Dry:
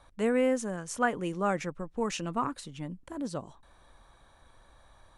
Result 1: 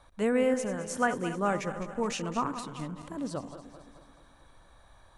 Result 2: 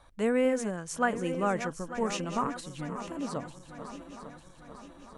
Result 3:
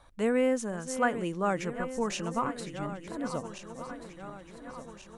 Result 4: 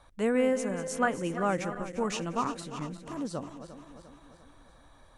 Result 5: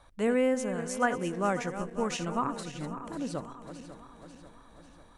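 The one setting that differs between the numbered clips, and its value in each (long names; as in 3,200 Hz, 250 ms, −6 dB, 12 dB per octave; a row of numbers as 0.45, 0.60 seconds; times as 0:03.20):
feedback delay that plays each chunk backwards, delay time: 108, 449, 717, 175, 272 milliseconds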